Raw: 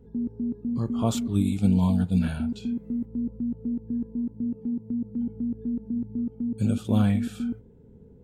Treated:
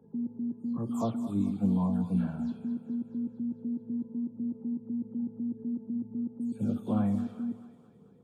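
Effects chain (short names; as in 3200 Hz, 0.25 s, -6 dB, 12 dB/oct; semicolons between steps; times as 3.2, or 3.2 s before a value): spectral delay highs early, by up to 0.174 s; HPF 120 Hz 24 dB/oct; resonant high shelf 1500 Hz -10 dB, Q 1.5; on a send: thinning echo 0.219 s, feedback 64%, high-pass 560 Hz, level -13 dB; on the sum: spring tank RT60 1.5 s, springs 50 ms, chirp 50 ms, DRR 17 dB; gain -5 dB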